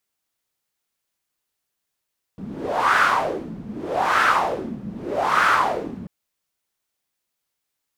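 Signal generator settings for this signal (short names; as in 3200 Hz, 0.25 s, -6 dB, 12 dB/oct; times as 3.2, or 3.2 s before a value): wind-like swept noise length 3.69 s, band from 190 Hz, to 1400 Hz, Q 4.3, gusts 3, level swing 17 dB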